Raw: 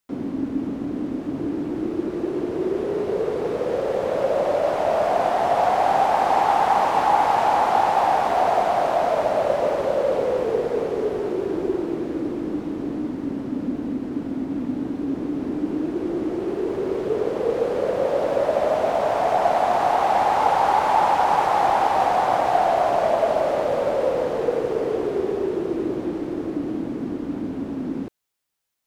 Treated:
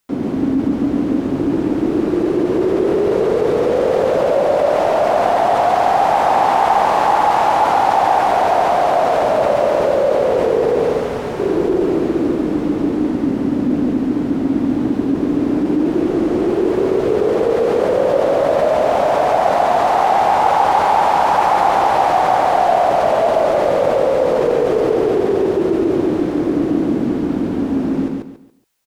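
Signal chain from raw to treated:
0:10.85–0:11.40: parametric band 360 Hz −13.5 dB 0.86 octaves
repeating echo 140 ms, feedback 28%, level −3 dB
in parallel at −1 dB: compressor whose output falls as the input rises −23 dBFS
on the sum: level +1 dB

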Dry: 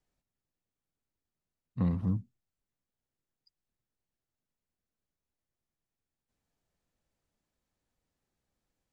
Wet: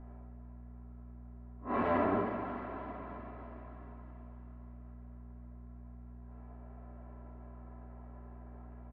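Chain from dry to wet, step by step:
spectrum smeared in time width 145 ms
mid-hump overdrive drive 35 dB, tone 3,100 Hz, clips at −22 dBFS
high-frequency loss of the air 260 metres
low-pass that shuts in the quiet parts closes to 850 Hz, open at −31.5 dBFS
three-way crossover with the lows and the highs turned down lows −18 dB, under 310 Hz, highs −15 dB, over 2,300 Hz
on a send: echo with a time of its own for lows and highs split 630 Hz, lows 101 ms, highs 313 ms, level −9.5 dB
on the sum: coupled-rooms reverb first 0.44 s, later 4.4 s, from −16 dB, DRR 0 dB
hum with harmonics 60 Hz, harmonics 4, −58 dBFS −3 dB per octave
comb filter 3 ms, depth 61%
in parallel at −0.5 dB: downward compressor, threshold −49 dBFS, peak gain reduction 18.5 dB
on the sum: level +2 dB

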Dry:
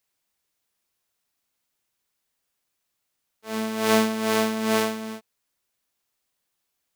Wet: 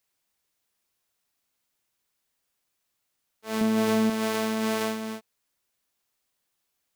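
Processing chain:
0:03.61–0:04.10: low-shelf EQ 390 Hz +10 dB
brickwall limiter −14.5 dBFS, peak gain reduction 10.5 dB

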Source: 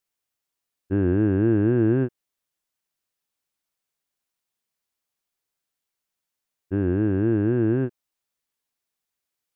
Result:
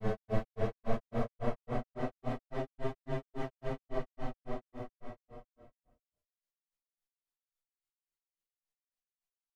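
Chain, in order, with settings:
full-wave rectification
extreme stretch with random phases 23×, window 0.10 s, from 0:01.86
tuned comb filter 67 Hz, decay 0.64 s, harmonics odd, mix 60%
granular cloud 173 ms, grains 3.6 per second, pitch spread up and down by 0 semitones

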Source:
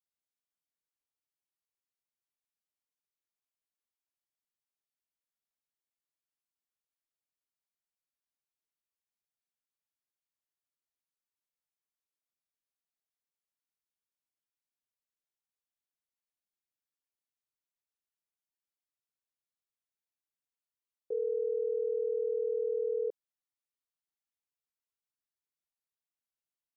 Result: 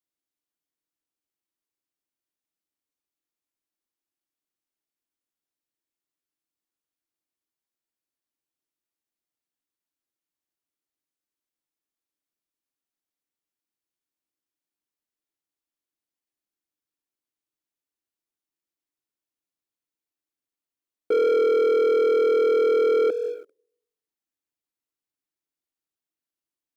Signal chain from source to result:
comb and all-pass reverb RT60 0.83 s, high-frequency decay 1×, pre-delay 115 ms, DRR 14.5 dB
leveller curve on the samples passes 3
parametric band 310 Hz +12 dB 0.58 octaves
level +6.5 dB

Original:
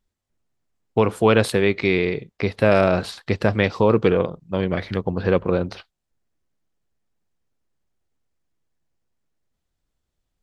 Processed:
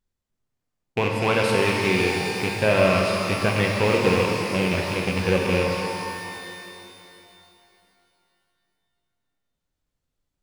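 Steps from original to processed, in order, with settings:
loose part that buzzes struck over −21 dBFS, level −11 dBFS
reverb with rising layers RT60 2.8 s, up +12 semitones, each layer −8 dB, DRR −0.5 dB
level −5.5 dB

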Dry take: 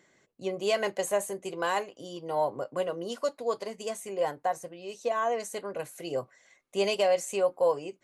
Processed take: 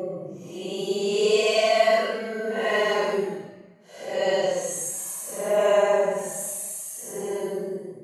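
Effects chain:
extreme stretch with random phases 9.6×, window 0.05 s, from 0:00.55
level +4 dB

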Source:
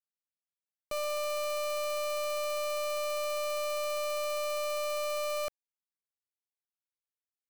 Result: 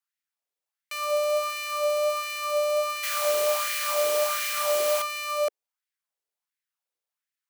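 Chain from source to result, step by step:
0:03.03–0:05.02: bit-depth reduction 6 bits, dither triangular
auto-filter high-pass sine 1.4 Hz 420–1,900 Hz
level +4 dB

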